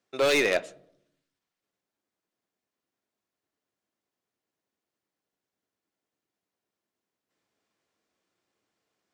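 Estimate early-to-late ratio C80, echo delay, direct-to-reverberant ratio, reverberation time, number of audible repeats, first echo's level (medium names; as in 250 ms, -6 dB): 24.0 dB, no echo, 12.0 dB, 0.70 s, no echo, no echo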